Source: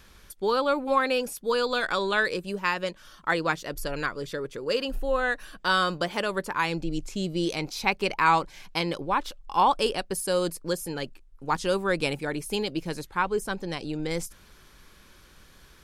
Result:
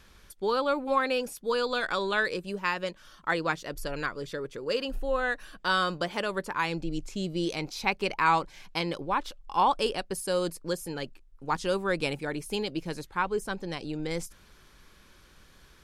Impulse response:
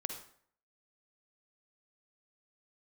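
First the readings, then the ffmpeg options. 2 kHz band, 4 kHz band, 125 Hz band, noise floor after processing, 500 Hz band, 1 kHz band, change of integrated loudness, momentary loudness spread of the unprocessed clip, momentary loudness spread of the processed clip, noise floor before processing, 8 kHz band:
−2.5 dB, −3.0 dB, −2.5 dB, −57 dBFS, −2.5 dB, −2.5 dB, −2.5 dB, 9 LU, 9 LU, −54 dBFS, −4.5 dB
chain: -af "highshelf=frequency=12000:gain=-6.5,volume=-2.5dB"

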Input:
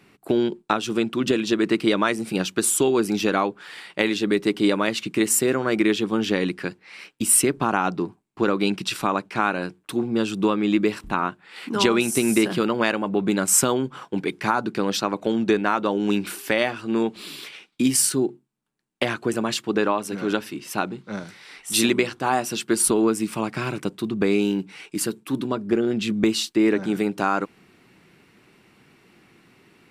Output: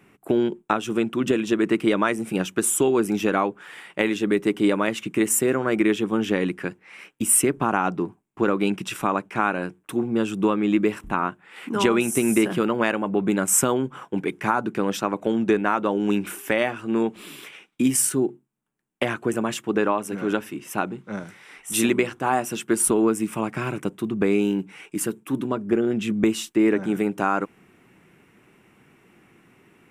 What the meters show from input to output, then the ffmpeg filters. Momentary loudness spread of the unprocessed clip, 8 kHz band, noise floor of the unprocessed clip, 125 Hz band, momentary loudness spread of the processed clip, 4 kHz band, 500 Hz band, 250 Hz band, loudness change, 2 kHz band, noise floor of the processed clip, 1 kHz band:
10 LU, −1.5 dB, −60 dBFS, 0.0 dB, 9 LU, −6.0 dB, 0.0 dB, 0.0 dB, −0.5 dB, −1.0 dB, −60 dBFS, 0.0 dB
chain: -af "equalizer=frequency=4400:width=2.4:gain=-14.5"

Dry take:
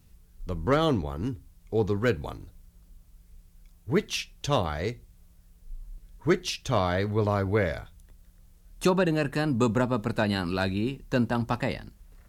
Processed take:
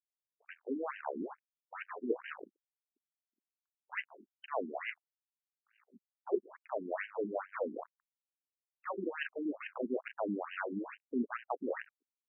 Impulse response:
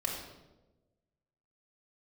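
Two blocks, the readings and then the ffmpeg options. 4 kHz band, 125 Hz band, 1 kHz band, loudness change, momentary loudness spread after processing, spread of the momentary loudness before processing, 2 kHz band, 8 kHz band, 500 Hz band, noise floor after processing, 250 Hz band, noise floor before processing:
−20.5 dB, below −30 dB, −11.0 dB, −12.0 dB, 14 LU, 10 LU, −9.5 dB, below −35 dB, −11.0 dB, below −85 dBFS, −12.5 dB, −57 dBFS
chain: -af "areverse,acompressor=threshold=-33dB:ratio=20,areverse,flanger=delay=5.4:depth=2.4:regen=82:speed=0.85:shape=sinusoidal,acrusher=bits=6:mix=0:aa=0.5,aeval=exprs='0.0335*(cos(1*acos(clip(val(0)/0.0335,-1,1)))-cos(1*PI/2))+0.00473*(cos(3*acos(clip(val(0)/0.0335,-1,1)))-cos(3*PI/2))':channel_layout=same,afftfilt=real='re*between(b*sr/1024,270*pow(2200/270,0.5+0.5*sin(2*PI*2.3*pts/sr))/1.41,270*pow(2200/270,0.5+0.5*sin(2*PI*2.3*pts/sr))*1.41)':imag='im*between(b*sr/1024,270*pow(2200/270,0.5+0.5*sin(2*PI*2.3*pts/sr))/1.41,270*pow(2200/270,0.5+0.5*sin(2*PI*2.3*pts/sr))*1.41)':win_size=1024:overlap=0.75,volume=14dB"

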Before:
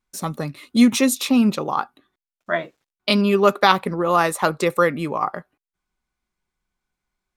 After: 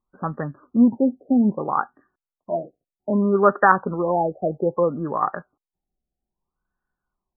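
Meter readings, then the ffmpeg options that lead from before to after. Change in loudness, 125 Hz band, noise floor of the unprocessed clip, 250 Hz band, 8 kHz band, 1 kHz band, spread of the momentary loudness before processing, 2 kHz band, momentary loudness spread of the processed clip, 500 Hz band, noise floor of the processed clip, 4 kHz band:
−1.5 dB, −1.5 dB, below −85 dBFS, −1.5 dB, below −40 dB, −1.0 dB, 13 LU, −3.0 dB, 12 LU, −1.0 dB, below −85 dBFS, below −40 dB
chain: -af "equalizer=frequency=8300:width_type=o:width=2.8:gain=14.5,afftfilt=real='re*lt(b*sr/1024,760*pow(1900/760,0.5+0.5*sin(2*PI*0.62*pts/sr)))':imag='im*lt(b*sr/1024,760*pow(1900/760,0.5+0.5*sin(2*PI*0.62*pts/sr)))':win_size=1024:overlap=0.75,volume=-1.5dB"

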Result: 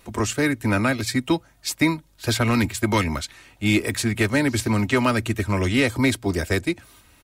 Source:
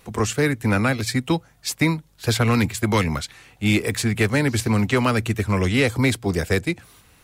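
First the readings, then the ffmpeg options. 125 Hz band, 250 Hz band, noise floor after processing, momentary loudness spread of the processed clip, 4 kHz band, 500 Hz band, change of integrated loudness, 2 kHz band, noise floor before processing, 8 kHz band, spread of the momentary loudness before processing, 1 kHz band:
−3.0 dB, 0.0 dB, −56 dBFS, 7 LU, −0.5 dB, −1.5 dB, −1.0 dB, 0.0 dB, −55 dBFS, −0.5 dB, 6 LU, −0.5 dB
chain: -af "aecho=1:1:3.2:0.42,volume=-1dB"

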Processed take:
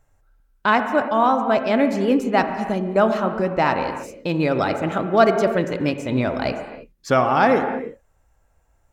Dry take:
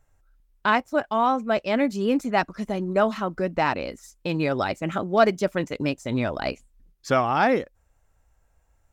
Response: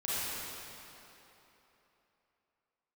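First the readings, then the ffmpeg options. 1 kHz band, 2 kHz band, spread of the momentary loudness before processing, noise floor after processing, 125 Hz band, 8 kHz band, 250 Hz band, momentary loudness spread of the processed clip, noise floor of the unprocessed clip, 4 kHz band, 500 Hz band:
+4.5 dB, +3.5 dB, 10 LU, −62 dBFS, +4.0 dB, can't be measured, +4.5 dB, 10 LU, −66 dBFS, +2.0 dB, +4.5 dB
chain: -filter_complex "[0:a]asplit=2[link_01][link_02];[link_02]highpass=110,lowpass=3000[link_03];[1:a]atrim=start_sample=2205,afade=type=out:start_time=0.38:duration=0.01,atrim=end_sample=17199,highshelf=frequency=2500:gain=-9.5[link_04];[link_03][link_04]afir=irnorm=-1:irlink=0,volume=-8.5dB[link_05];[link_01][link_05]amix=inputs=2:normalize=0,volume=2dB"

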